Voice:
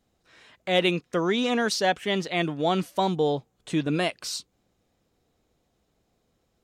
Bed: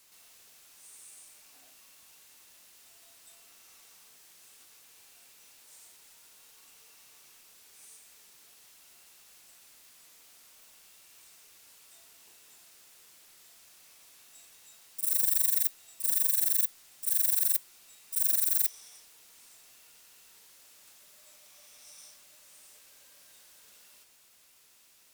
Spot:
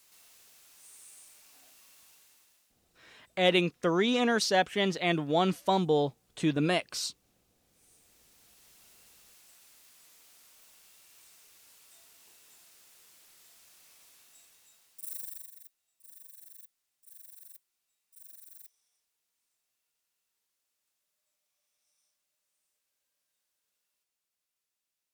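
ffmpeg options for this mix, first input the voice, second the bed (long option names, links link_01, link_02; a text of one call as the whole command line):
ffmpeg -i stem1.wav -i stem2.wav -filter_complex "[0:a]adelay=2700,volume=-2dB[link_01];[1:a]volume=15dB,afade=type=out:start_time=2.01:duration=0.74:silence=0.141254,afade=type=in:start_time=7.63:duration=1.18:silence=0.149624,afade=type=out:start_time=14.02:duration=1.49:silence=0.0668344[link_02];[link_01][link_02]amix=inputs=2:normalize=0" out.wav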